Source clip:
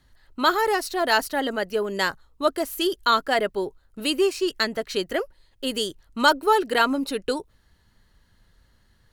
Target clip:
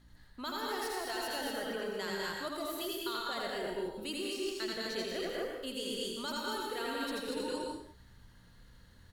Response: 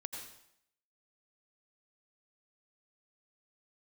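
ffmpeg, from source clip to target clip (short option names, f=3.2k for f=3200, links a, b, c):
-filter_complex "[0:a]acrossover=split=150|3000[a][b][c];[b]acompressor=threshold=-24dB:ratio=6[d];[a][d][c]amix=inputs=3:normalize=0,aecho=1:1:81.63|201.2|236.2:0.631|0.562|0.631,aeval=exprs='val(0)+0.00141*(sin(2*PI*60*n/s)+sin(2*PI*2*60*n/s)/2+sin(2*PI*3*60*n/s)/3+sin(2*PI*4*60*n/s)/4+sin(2*PI*5*60*n/s)/5)':c=same,areverse,acompressor=threshold=-33dB:ratio=6,areverse[e];[1:a]atrim=start_sample=2205,afade=t=out:st=0.36:d=0.01,atrim=end_sample=16317[f];[e][f]afir=irnorm=-1:irlink=0"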